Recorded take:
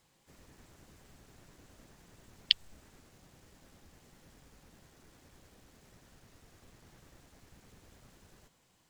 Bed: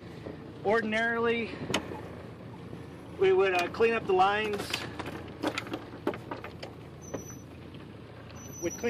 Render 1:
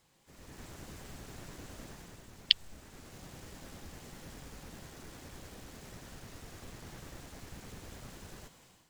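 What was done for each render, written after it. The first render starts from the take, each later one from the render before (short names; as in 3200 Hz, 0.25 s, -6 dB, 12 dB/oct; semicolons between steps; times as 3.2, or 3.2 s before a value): limiter -6 dBFS, peak gain reduction 4 dB; AGC gain up to 11 dB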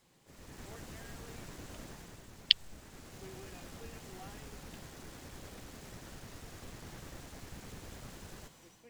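add bed -29 dB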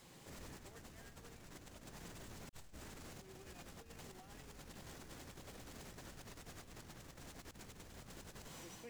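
negative-ratio compressor -53 dBFS, ratio -0.5; limiter -43.5 dBFS, peak gain reduction 8.5 dB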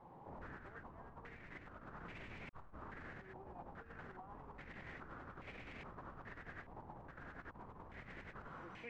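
stepped low-pass 2.4 Hz 890–2300 Hz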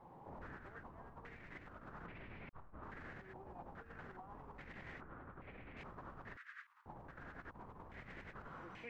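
2.06–2.83 air absorption 280 m; 5.01–5.77 air absorption 450 m; 6.37–6.86 steep high-pass 1200 Hz 48 dB/oct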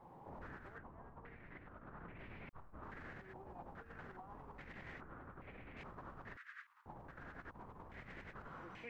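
0.78–2.19 air absorption 350 m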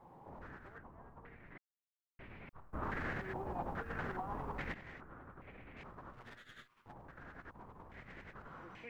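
1.58–2.19 mute; 2.73–4.74 gain +12 dB; 6.13–6.93 minimum comb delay 8.3 ms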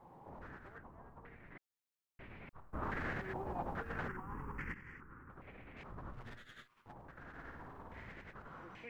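4.08–5.3 fixed phaser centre 1600 Hz, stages 4; 5.9–6.46 low shelf 190 Hz +10.5 dB; 7.28–8.12 flutter echo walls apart 9.4 m, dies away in 1.1 s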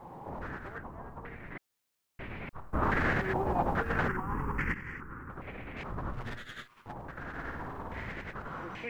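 gain +11.5 dB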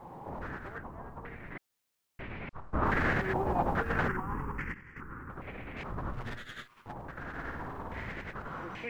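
2.21–2.86 LPF 5800 Hz; 4.16–4.96 fade out, to -12.5 dB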